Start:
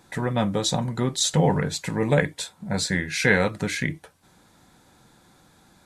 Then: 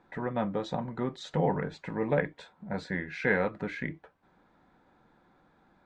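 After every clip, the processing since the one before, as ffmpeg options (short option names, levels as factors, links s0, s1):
-af "lowpass=1800,equalizer=f=100:t=o:w=1.4:g=-9,volume=0.562"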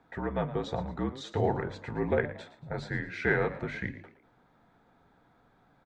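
-filter_complex "[0:a]bandreject=f=50:t=h:w=6,bandreject=f=100:t=h:w=6,bandreject=f=150:t=h:w=6,bandreject=f=200:t=h:w=6,afreqshift=-53,asplit=4[s0][s1][s2][s3];[s1]adelay=114,afreqshift=65,volume=0.178[s4];[s2]adelay=228,afreqshift=130,volume=0.0638[s5];[s3]adelay=342,afreqshift=195,volume=0.0232[s6];[s0][s4][s5][s6]amix=inputs=4:normalize=0"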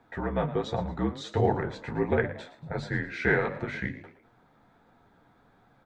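-af "flanger=delay=8.4:depth=6.9:regen=-34:speed=1.4:shape=sinusoidal,volume=2.11"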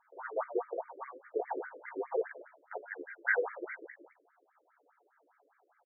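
-filter_complex "[0:a]asplit=2[s0][s1];[s1]adelay=14,volume=0.447[s2];[s0][s2]amix=inputs=2:normalize=0,afftfilt=real='re*between(b*sr/1024,410*pow(1700/410,0.5+0.5*sin(2*PI*4.9*pts/sr))/1.41,410*pow(1700/410,0.5+0.5*sin(2*PI*4.9*pts/sr))*1.41)':imag='im*between(b*sr/1024,410*pow(1700/410,0.5+0.5*sin(2*PI*4.9*pts/sr))/1.41,410*pow(1700/410,0.5+0.5*sin(2*PI*4.9*pts/sr))*1.41)':win_size=1024:overlap=0.75,volume=0.75"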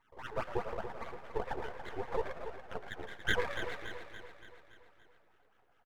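-filter_complex "[0:a]asplit=2[s0][s1];[s1]asplit=6[s2][s3][s4][s5][s6][s7];[s2]adelay=111,afreqshift=80,volume=0.266[s8];[s3]adelay=222,afreqshift=160,volume=0.143[s9];[s4]adelay=333,afreqshift=240,volume=0.0776[s10];[s5]adelay=444,afreqshift=320,volume=0.0417[s11];[s6]adelay=555,afreqshift=400,volume=0.0226[s12];[s7]adelay=666,afreqshift=480,volume=0.0122[s13];[s8][s9][s10][s11][s12][s13]amix=inputs=6:normalize=0[s14];[s0][s14]amix=inputs=2:normalize=0,aeval=exprs='max(val(0),0)':c=same,asplit=2[s15][s16];[s16]aecho=0:1:285|570|855|1140|1425|1710:0.335|0.181|0.0977|0.0527|0.0285|0.0154[s17];[s15][s17]amix=inputs=2:normalize=0,volume=1.26"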